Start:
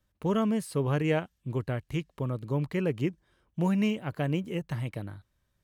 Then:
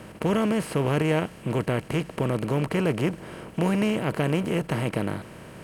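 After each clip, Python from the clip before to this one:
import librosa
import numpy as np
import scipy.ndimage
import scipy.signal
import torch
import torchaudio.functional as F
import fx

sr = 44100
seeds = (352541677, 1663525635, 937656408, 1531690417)

y = fx.bin_compress(x, sr, power=0.4)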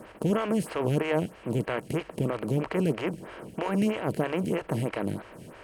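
y = fx.stagger_phaser(x, sr, hz=3.1)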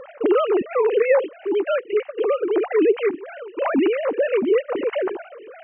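y = fx.sine_speech(x, sr)
y = F.gain(torch.from_numpy(y), 8.0).numpy()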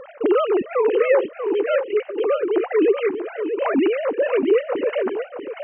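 y = x + 10.0 ** (-8.5 / 20.0) * np.pad(x, (int(639 * sr / 1000.0), 0))[:len(x)]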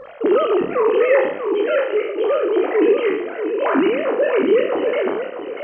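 y = fx.spec_trails(x, sr, decay_s=0.76)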